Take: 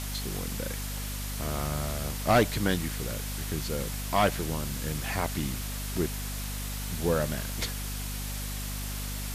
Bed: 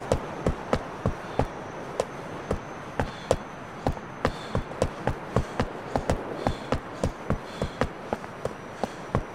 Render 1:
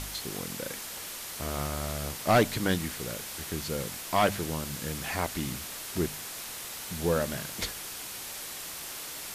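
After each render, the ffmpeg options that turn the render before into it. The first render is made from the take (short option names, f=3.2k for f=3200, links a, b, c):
-af "bandreject=f=50:t=h:w=4,bandreject=f=100:t=h:w=4,bandreject=f=150:t=h:w=4,bandreject=f=200:t=h:w=4,bandreject=f=250:t=h:w=4"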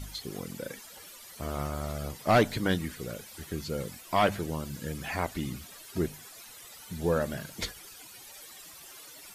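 -af "afftdn=nr=14:nf=-40"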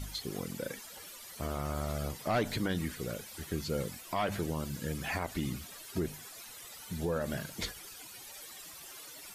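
-af "alimiter=limit=-23dB:level=0:latency=1:release=47"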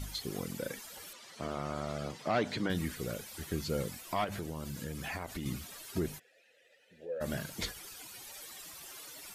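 -filter_complex "[0:a]asettb=1/sr,asplit=3[a][b][c];[a]atrim=end=1.134[d];[b]atrim=start=1.13:end=2.7,asetpts=PTS-STARTPTS,afade=t=in:d=0.004:c=qsin,afade=t=out:st=1.566:d=0.004:c=qsin,highpass=140,lowpass=5.8k[e];[c]atrim=start=2.696[f];[d][e]acrossfade=d=0.004:c1=hsin:c2=qsin[g];[g][f]acrossfade=d=0.004:c1=qsin:c2=hsin,asettb=1/sr,asplit=3[h][i][j];[h]atrim=end=4.244[k];[i]atrim=start=4.24:end=5.46,asetpts=PTS-STARTPTS,afade=t=in:d=0.004:c=qsin,afade=t=out:st=1.216:d=0.004:c=qsin,acompressor=threshold=-36dB:ratio=3:attack=3.2:release=140:knee=1:detection=peak[l];[j]atrim=start=5.456[m];[k][l]acrossfade=d=0.004:c1=hsin:c2=qsin[n];[n][m]acrossfade=d=0.004:c1=qsin:c2=hsin,asplit=3[o][p][q];[o]afade=t=out:st=6.18:d=0.02[r];[p]asplit=3[s][t][u];[s]bandpass=f=530:t=q:w=8,volume=0dB[v];[t]bandpass=f=1.84k:t=q:w=8,volume=-6dB[w];[u]bandpass=f=2.48k:t=q:w=8,volume=-9dB[x];[v][w][x]amix=inputs=3:normalize=0,afade=t=in:st=6.18:d=0.02,afade=t=out:st=7.2:d=0.02[y];[q]afade=t=in:st=7.2:d=0.02[z];[r][y][z]amix=inputs=3:normalize=0"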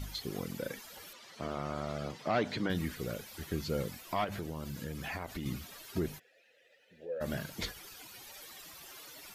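-af "equalizer=f=8.8k:w=1.3:g=-6.5"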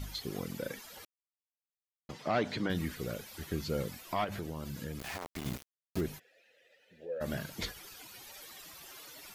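-filter_complex "[0:a]asettb=1/sr,asplit=3[a][b][c];[a]atrim=end=4.994[d];[b]atrim=start=4.99:end=6.01,asetpts=PTS-STARTPTS,afade=t=in:d=0.004:c=qsin,afade=t=out:st=1.016:d=0.004:c=qsin,aeval=exprs='val(0)*gte(abs(val(0)),0.0133)':c=same[e];[c]atrim=start=6.006[f];[d][e]acrossfade=d=0.004:c1=hsin:c2=qsin[g];[g][f]acrossfade=d=0.004:c1=qsin:c2=hsin,asplit=3[h][i][j];[h]atrim=end=1.05,asetpts=PTS-STARTPTS,afade=t=out:st=1.046:d=0.004:c=hsin[k];[i]atrim=start=1.05:end=2.09,asetpts=PTS-STARTPTS,volume=0[l];[j]atrim=start=2.09,asetpts=PTS-STARTPTS,afade=t=in:d=0.004:c=hsin[m];[k][l][m]concat=n=3:v=0:a=1"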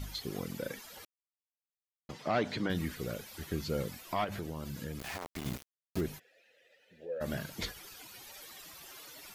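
-af anull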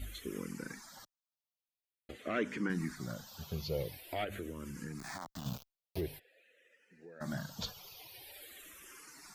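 -filter_complex "[0:a]asplit=2[a][b];[b]afreqshift=-0.47[c];[a][c]amix=inputs=2:normalize=1"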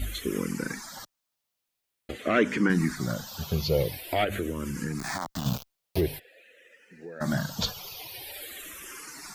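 -af "volume=11.5dB"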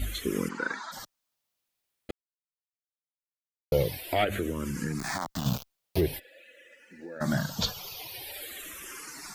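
-filter_complex "[0:a]asplit=3[a][b][c];[a]afade=t=out:st=0.48:d=0.02[d];[b]highpass=360,equalizer=f=600:t=q:w=4:g=5,equalizer=f=970:t=q:w=4:g=9,equalizer=f=1.4k:t=q:w=4:g=9,equalizer=f=2.4k:t=q:w=4:g=-5,equalizer=f=3.6k:t=q:w=4:g=7,equalizer=f=5.4k:t=q:w=4:g=-9,lowpass=f=5.7k:w=0.5412,lowpass=f=5.7k:w=1.3066,afade=t=in:st=0.48:d=0.02,afade=t=out:st=0.91:d=0.02[e];[c]afade=t=in:st=0.91:d=0.02[f];[d][e][f]amix=inputs=3:normalize=0,asettb=1/sr,asplit=3[g][h][i];[g]atrim=end=6.124[j];[h]atrim=start=6.12:end=7.17,asetpts=PTS-STARTPTS,afade=t=in:d=0.004:c=qsin,afade=t=out:st=1.046:d=0.004:c=qsin,aecho=1:1:3.5:0.65,atrim=end_sample=46305[k];[i]atrim=start=7.166[l];[j][k]acrossfade=d=0.004:c1=hsin:c2=qsin[m];[m][l]acrossfade=d=0.004:c1=qsin:c2=hsin,asplit=3[n][o][p];[n]atrim=end=2.11,asetpts=PTS-STARTPTS,afade=t=out:st=2.106:d=0.004:c=hsin[q];[o]atrim=start=2.11:end=3.72,asetpts=PTS-STARTPTS,volume=0[r];[p]atrim=start=3.72,asetpts=PTS-STARTPTS,afade=t=in:d=0.004:c=hsin[s];[q][r][s]concat=n=3:v=0:a=1"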